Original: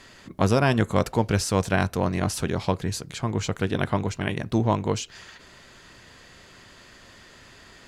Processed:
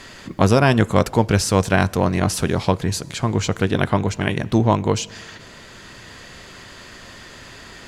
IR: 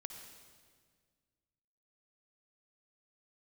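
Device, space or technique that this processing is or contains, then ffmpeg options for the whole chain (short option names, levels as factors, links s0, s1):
ducked reverb: -filter_complex "[0:a]asplit=3[s0][s1][s2];[1:a]atrim=start_sample=2205[s3];[s1][s3]afir=irnorm=-1:irlink=0[s4];[s2]apad=whole_len=347220[s5];[s4][s5]sidechaincompress=threshold=0.0316:ratio=12:attack=6.2:release=1090,volume=1[s6];[s0][s6]amix=inputs=2:normalize=0,volume=1.78"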